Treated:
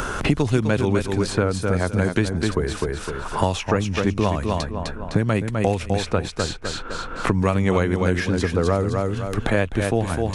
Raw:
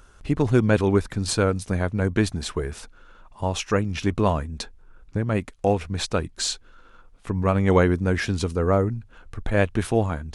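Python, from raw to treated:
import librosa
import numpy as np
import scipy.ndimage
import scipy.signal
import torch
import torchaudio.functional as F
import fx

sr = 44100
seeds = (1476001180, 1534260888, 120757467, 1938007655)

p1 = x + fx.echo_feedback(x, sr, ms=254, feedback_pct=23, wet_db=-6.5, dry=0)
y = fx.band_squash(p1, sr, depth_pct=100)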